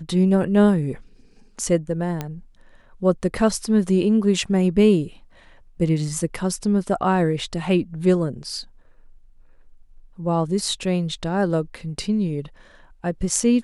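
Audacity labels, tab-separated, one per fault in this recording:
2.210000	2.210000	click −13 dBFS

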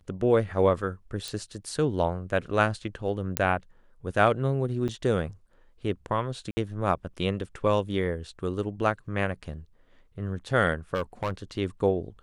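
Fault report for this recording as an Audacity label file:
1.280000	1.280000	click
3.370000	3.370000	click −5 dBFS
4.880000	4.890000	drop-out 7.6 ms
6.510000	6.570000	drop-out 60 ms
10.940000	11.320000	clipping −23.5 dBFS

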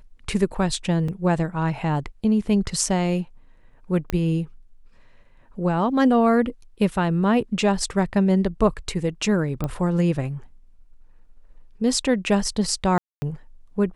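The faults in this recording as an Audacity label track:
1.080000	1.080000	drop-out 4.4 ms
4.100000	4.100000	click −11 dBFS
9.640000	9.640000	click −14 dBFS
12.980000	13.220000	drop-out 240 ms

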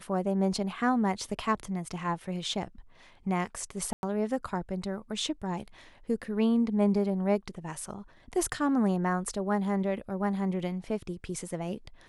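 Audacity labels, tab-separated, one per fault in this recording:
3.930000	4.030000	drop-out 101 ms

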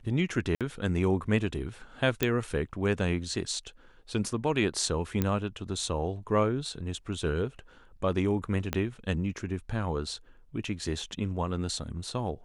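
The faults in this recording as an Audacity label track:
0.550000	0.610000	drop-out 57 ms
2.230000	2.230000	click −10 dBFS
5.220000	5.220000	click −13 dBFS
8.730000	8.730000	click −13 dBFS

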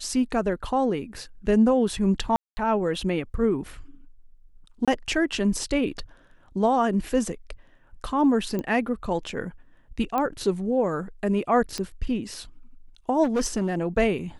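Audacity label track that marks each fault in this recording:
2.360000	2.570000	drop-out 210 ms
4.850000	4.880000	drop-out 26 ms
8.590000	8.590000	click −17 dBFS
10.180000	10.180000	click −14 dBFS
11.780000	11.780000	click −16 dBFS
13.230000	13.780000	clipping −19.5 dBFS

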